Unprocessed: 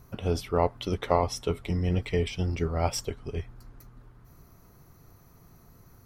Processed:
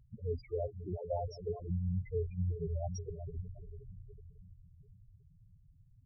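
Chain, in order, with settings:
echo with a time of its own for lows and highs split 380 Hz, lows 508 ms, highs 366 ms, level −9 dB
spectral peaks only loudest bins 4
level −6.5 dB

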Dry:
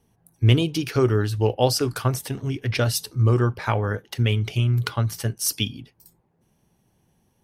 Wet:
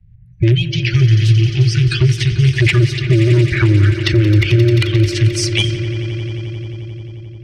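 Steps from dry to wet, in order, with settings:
spectral magnitudes quantised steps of 30 dB
source passing by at 0:03.40, 8 m/s, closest 5.7 metres
treble cut that deepens with the level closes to 1,300 Hz, closed at −23.5 dBFS
elliptic band-stop filter 130–2,000 Hz, stop band 40 dB
high-shelf EQ 8,100 Hz −9 dB
brickwall limiter −25.5 dBFS, peak gain reduction 11.5 dB
sine wavefolder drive 17 dB, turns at −13.5 dBFS
on a send: echo that builds up and dies away 88 ms, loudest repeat 5, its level −16 dB
on the sum: low-pass that shuts in the quiet parts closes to 680 Hz, open at −15.5 dBFS
multiband upward and downward compressor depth 40%
level +6 dB

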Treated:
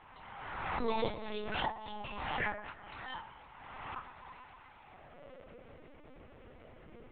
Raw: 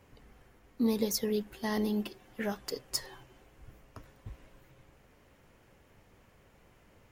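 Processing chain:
high-pass filter sweep 920 Hz → 280 Hz, 0:04.73–0:05.84
gate with flip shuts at −26 dBFS, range −29 dB
on a send: delay that swaps between a low-pass and a high-pass 115 ms, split 1,900 Hz, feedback 53%, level −12.5 dB
on the sum: rectangular room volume 170 cubic metres, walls furnished, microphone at 2 metres
linear-prediction vocoder at 8 kHz pitch kept
background raised ahead of every attack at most 32 dB per second
level +1 dB

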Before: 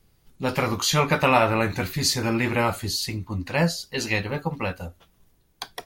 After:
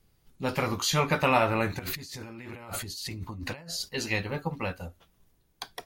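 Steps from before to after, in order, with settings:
0:01.79–0:03.89: compressor whose output falls as the input rises −35 dBFS, ratio −1
level −4.5 dB

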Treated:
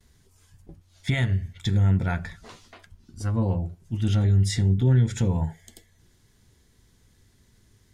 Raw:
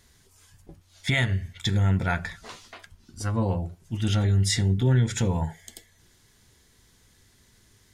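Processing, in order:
low-shelf EQ 460 Hz +8 dB
noise gate with hold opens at −50 dBFS
level −5.5 dB

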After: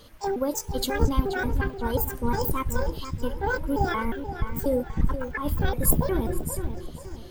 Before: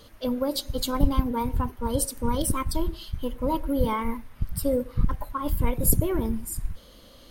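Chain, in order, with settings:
pitch shifter gated in a rhythm +8 semitones, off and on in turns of 179 ms
feedback echo with a low-pass in the loop 479 ms, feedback 41%, low-pass 4,000 Hz, level −9.5 dB

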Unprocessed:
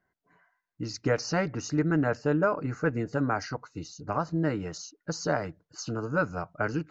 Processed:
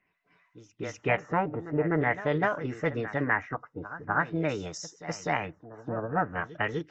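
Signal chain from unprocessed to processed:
auto-filter low-pass sine 0.46 Hz 780–4,700 Hz
echo ahead of the sound 250 ms −14 dB
formants moved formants +4 semitones
level −2 dB

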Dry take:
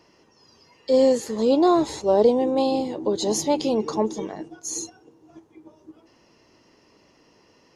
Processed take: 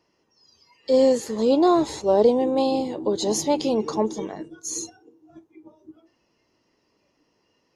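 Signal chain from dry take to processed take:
noise reduction from a noise print of the clip's start 11 dB
0:04.38–0:04.83: Butterworth band-reject 770 Hz, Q 3

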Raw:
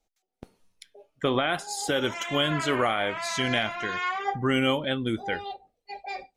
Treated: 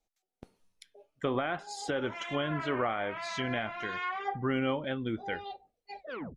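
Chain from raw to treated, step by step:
turntable brake at the end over 0.37 s
treble cut that deepens with the level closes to 2,000 Hz, closed at −22.5 dBFS
level −5.5 dB

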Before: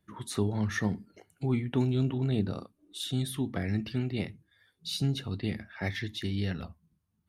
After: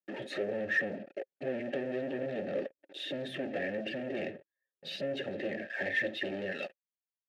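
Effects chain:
spectral magnitudes quantised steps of 15 dB
downward compressor 8 to 1, threshold −31 dBFS, peak gain reduction 9.5 dB
spectral tilt −3 dB per octave, from 0:06.51 +2.5 dB per octave
leveller curve on the samples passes 2
high-pass filter 270 Hz 12 dB per octave
high-shelf EQ 8,100 Hz −6.5 dB
leveller curve on the samples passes 5
formant filter e
notch comb filter 490 Hz
level +2 dB

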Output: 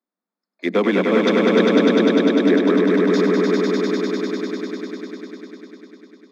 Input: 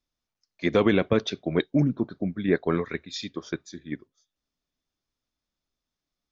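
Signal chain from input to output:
adaptive Wiener filter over 15 samples
Chebyshev high-pass filter 180 Hz, order 10
echo that builds up and dies away 100 ms, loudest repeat 5, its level −3.5 dB
level +3.5 dB

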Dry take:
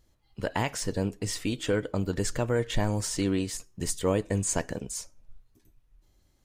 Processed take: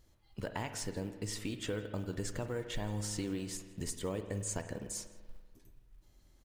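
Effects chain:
downward compressor 2.5 to 1, threshold −40 dBFS, peak gain reduction 13 dB
floating-point word with a short mantissa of 4 bits
slap from a distant wall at 28 metres, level −21 dB
spring reverb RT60 1.6 s, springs 48 ms, chirp 65 ms, DRR 8.5 dB

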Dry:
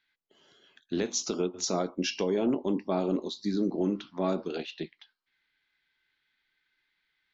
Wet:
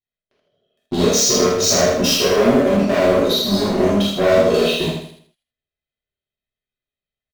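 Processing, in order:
low-pass that shuts in the quiet parts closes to 1,500 Hz, open at −25 dBFS
flat-topped bell 1,400 Hz −16 dB
notch filter 510 Hz, Q 12
comb filter 1.6 ms, depth 83%
leveller curve on the samples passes 5
downward compressor, threshold −22 dBFS, peak gain reduction 4.5 dB
repeating echo 80 ms, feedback 38%, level −5 dB
reverb whose tail is shaped and stops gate 100 ms flat, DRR −6.5 dB

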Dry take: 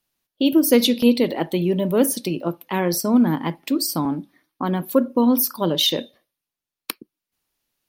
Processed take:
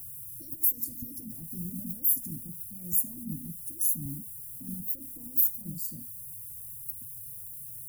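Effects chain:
in parallel at −5 dB: bit-depth reduction 6 bits, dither triangular
on the sum: brickwall limiter −10.5 dBFS, peak gain reduction 11 dB
elliptic band-stop filter 120–8,500 Hz, stop band 50 dB
formants moved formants +4 semitones
level +1 dB

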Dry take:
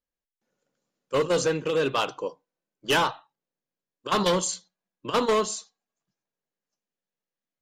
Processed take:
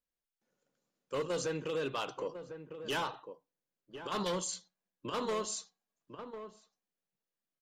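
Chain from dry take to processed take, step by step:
downward compressor 10 to 1, threshold −27 dBFS, peak gain reduction 8.5 dB
slap from a distant wall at 180 metres, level −11 dB
brickwall limiter −24 dBFS, peak gain reduction 6 dB
level −3.5 dB

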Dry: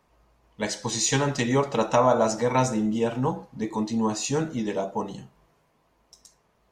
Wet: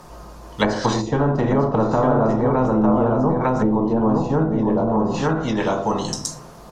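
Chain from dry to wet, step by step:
in parallel at −2 dB: brickwall limiter −16 dBFS, peak gain reduction 8 dB
on the sum: drawn EQ curve 1,400 Hz 0 dB, 2,200 Hz −9 dB, 5,000 Hz +2 dB
on a send: single-tap delay 902 ms −5 dB
on the sum: rectangular room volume 260 cubic metres, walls furnished, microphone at 0.88 metres
treble cut that deepens with the level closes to 480 Hz, closed at −16 dBFS
every bin compressed towards the loudest bin 2 to 1

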